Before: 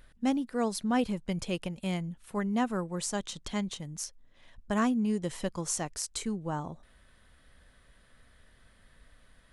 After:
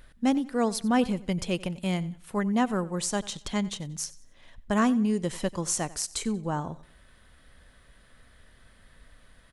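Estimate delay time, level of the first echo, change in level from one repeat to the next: 92 ms, -19.5 dB, -9.5 dB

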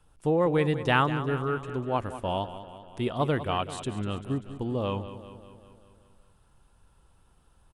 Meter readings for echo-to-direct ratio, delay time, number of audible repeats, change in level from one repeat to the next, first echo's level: -10.5 dB, 195 ms, 5, -4.5 dB, -12.5 dB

